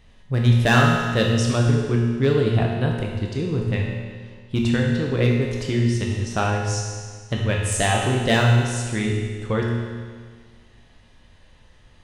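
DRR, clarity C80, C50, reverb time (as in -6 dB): -1.5 dB, 3.0 dB, 1.5 dB, 1.7 s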